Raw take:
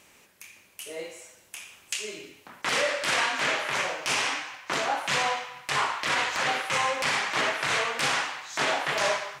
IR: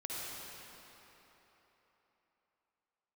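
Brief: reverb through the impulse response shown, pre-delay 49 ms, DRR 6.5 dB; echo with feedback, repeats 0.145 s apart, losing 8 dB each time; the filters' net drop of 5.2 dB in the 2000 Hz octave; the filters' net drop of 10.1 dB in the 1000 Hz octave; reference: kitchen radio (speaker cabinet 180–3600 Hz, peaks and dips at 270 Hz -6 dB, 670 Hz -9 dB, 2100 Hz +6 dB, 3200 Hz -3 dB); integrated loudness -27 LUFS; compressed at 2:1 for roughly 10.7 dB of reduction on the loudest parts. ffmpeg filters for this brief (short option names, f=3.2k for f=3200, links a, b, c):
-filter_complex "[0:a]equalizer=f=1k:t=o:g=-9,equalizer=f=2k:t=o:g=-7,acompressor=threshold=-46dB:ratio=2,aecho=1:1:145|290|435|580|725:0.398|0.159|0.0637|0.0255|0.0102,asplit=2[a][b];[1:a]atrim=start_sample=2205,adelay=49[c];[b][c]afir=irnorm=-1:irlink=0,volume=-8.5dB[d];[a][d]amix=inputs=2:normalize=0,highpass=180,equalizer=f=270:t=q:w=4:g=-6,equalizer=f=670:t=q:w=4:g=-9,equalizer=f=2.1k:t=q:w=4:g=6,equalizer=f=3.2k:t=q:w=4:g=-3,lowpass=f=3.6k:w=0.5412,lowpass=f=3.6k:w=1.3066,volume=14dB"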